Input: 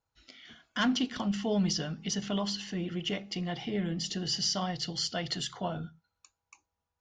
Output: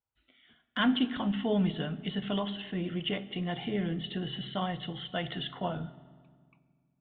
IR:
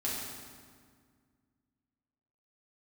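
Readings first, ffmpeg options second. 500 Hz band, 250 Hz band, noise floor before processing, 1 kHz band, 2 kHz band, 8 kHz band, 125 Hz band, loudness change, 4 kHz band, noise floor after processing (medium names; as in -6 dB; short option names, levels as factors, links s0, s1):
+1.0 dB, +1.0 dB, under -85 dBFS, +1.0 dB, +1.0 dB, under -40 dB, +0.5 dB, -0.5 dB, -3.5 dB, -77 dBFS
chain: -filter_complex "[0:a]aresample=8000,aresample=44100,agate=range=0.282:threshold=0.00501:ratio=16:detection=peak,asplit=2[s0][s1];[1:a]atrim=start_sample=2205[s2];[s1][s2]afir=irnorm=-1:irlink=0,volume=0.133[s3];[s0][s3]amix=inputs=2:normalize=0"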